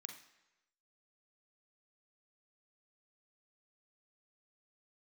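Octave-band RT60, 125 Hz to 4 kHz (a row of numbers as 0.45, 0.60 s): 0.95, 0.85, 1.0, 1.0, 1.0, 0.90 s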